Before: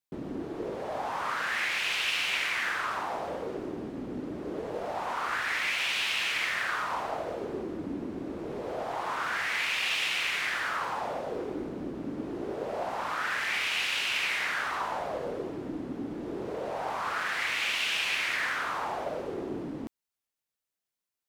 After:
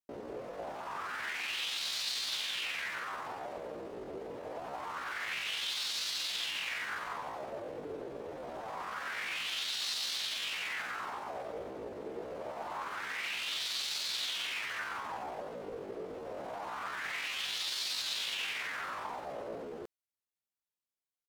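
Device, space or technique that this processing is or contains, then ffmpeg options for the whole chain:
chipmunk voice: -af "asetrate=68011,aresample=44100,atempo=0.64842,volume=-6dB"

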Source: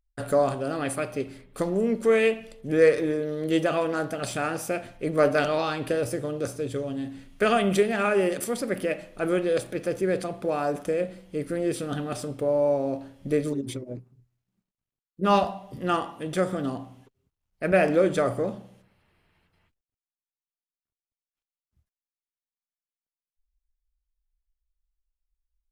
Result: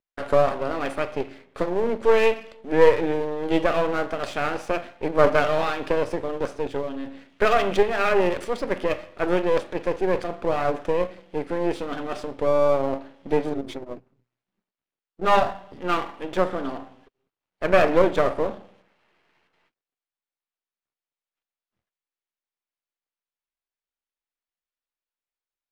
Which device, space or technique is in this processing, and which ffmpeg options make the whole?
crystal radio: -filter_complex "[0:a]asettb=1/sr,asplit=3[link_01][link_02][link_03];[link_01]atrim=end=15.524[link_04];[link_02]atrim=start=15.52:end=16.28,asetpts=PTS-STARTPTS,afade=type=in:duration=0.004:curve=qsin,afade=type=out:start_time=0.756:duration=0.004:curve=qsin,equalizer=frequency=750:width=1.7:gain=-4[link_05];[link_03]atrim=start=16.276[link_06];[link_04][link_05]acrossfade=duration=0.004:curve1=hsin:curve2=qsin[link_07];[link_07][link_06]acrossfade=duration=0.004:curve1=qsin:curve2=hsin,highpass=320,lowpass=3400,aeval=exprs='if(lt(val(0),0),0.251*val(0),val(0))':channel_layout=same,volume=7.5dB"

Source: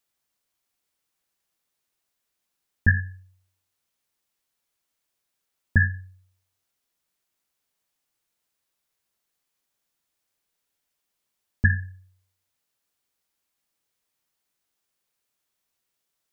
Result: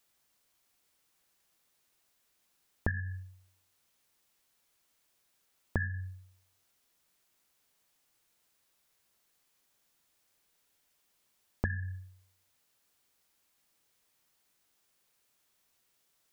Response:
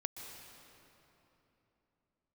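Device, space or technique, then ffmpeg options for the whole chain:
serial compression, peaks first: -af "acompressor=threshold=-28dB:ratio=6,acompressor=threshold=-36dB:ratio=2.5,volume=5.5dB"

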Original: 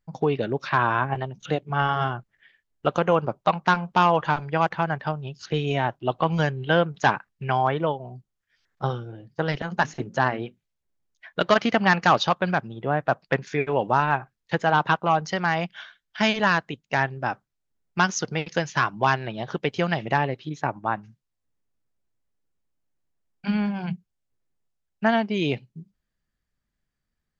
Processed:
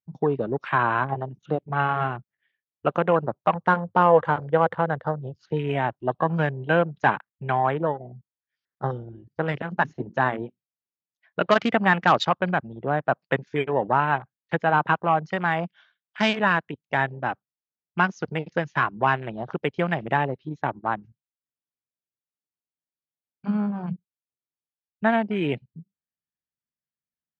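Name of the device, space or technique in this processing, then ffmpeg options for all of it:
over-cleaned archive recording: -filter_complex "[0:a]highpass=110,lowpass=5400,afwtdn=0.0224,asettb=1/sr,asplit=3[link_01][link_02][link_03];[link_01]atrim=end=3.544[link_04];[link_02]atrim=start=3.54:end=5.36,asetpts=PTS-STARTPTS,afade=type=in:duration=0.004:curve=qsin,afade=type=out:start_time=1.816:duration=0.004:curve=qsin,equalizer=frequency=100:width_type=o:width=0.33:gain=9,equalizer=frequency=500:width_type=o:width=0.33:gain=10,equalizer=frequency=2500:width_type=o:width=0.33:gain=-12[link_05];[link_03]atrim=start=5.356[link_06];[link_04][link_05]acrossfade=duration=0.004:curve1=hsin:curve2=qsin[link_07];[link_07][link_06]acrossfade=duration=0.004:curve1=qsin:curve2=hsin"

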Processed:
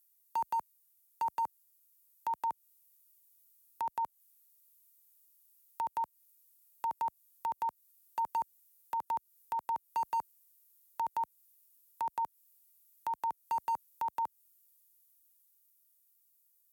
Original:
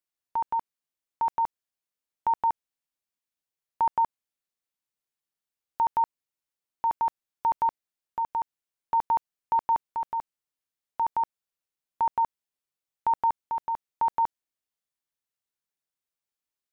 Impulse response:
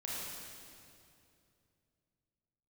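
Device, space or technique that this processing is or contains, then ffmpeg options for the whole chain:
FM broadcast chain: -filter_complex "[0:a]highpass=54,dynaudnorm=framelen=620:gausssize=7:maxgain=3.5dB,acrossover=split=160|890[link_01][link_02][link_03];[link_01]acompressor=threshold=-57dB:ratio=4[link_04];[link_02]acompressor=threshold=-27dB:ratio=4[link_05];[link_03]acompressor=threshold=-31dB:ratio=4[link_06];[link_04][link_05][link_06]amix=inputs=3:normalize=0,aemphasis=mode=production:type=50fm,alimiter=limit=-21dB:level=0:latency=1:release=304,asoftclip=type=hard:threshold=-23.5dB,lowpass=frequency=15000:width=0.5412,lowpass=frequency=15000:width=1.3066,aemphasis=mode=production:type=50fm,volume=-4dB"

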